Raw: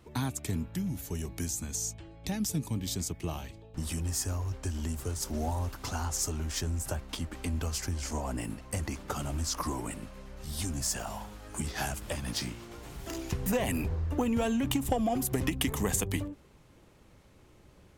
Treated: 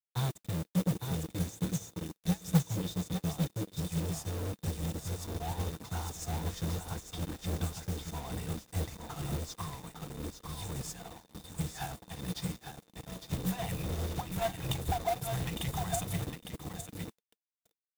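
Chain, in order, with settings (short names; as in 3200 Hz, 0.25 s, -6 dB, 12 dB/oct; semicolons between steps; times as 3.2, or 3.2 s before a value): FFT band-reject 190–650 Hz; on a send: feedback echo 0.856 s, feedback 23%, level -4 dB; on the sum: requantised 6-bit, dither none; small resonant body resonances 210/310/450/3600 Hz, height 16 dB, ringing for 35 ms; modulation noise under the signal 17 dB; in parallel at -5 dB: wavefolder -22.5 dBFS; on the sum: upward expander 2.5:1, over -33 dBFS; gain -3 dB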